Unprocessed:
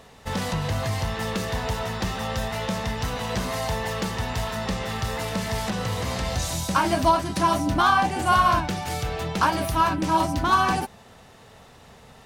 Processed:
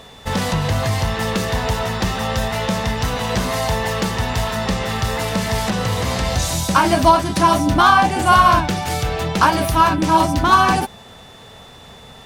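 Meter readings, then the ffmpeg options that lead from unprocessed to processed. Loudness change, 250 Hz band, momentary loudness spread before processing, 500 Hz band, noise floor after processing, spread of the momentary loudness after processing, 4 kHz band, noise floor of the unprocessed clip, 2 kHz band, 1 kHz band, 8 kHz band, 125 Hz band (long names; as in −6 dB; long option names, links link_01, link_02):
+7.0 dB, +7.0 dB, 9 LU, +7.0 dB, −42 dBFS, 9 LU, +7.0 dB, −50 dBFS, +7.0 dB, +7.0 dB, +7.0 dB, +7.0 dB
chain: -af "aeval=exprs='val(0)+0.00251*sin(2*PI*3500*n/s)':channel_layout=same,volume=7dB"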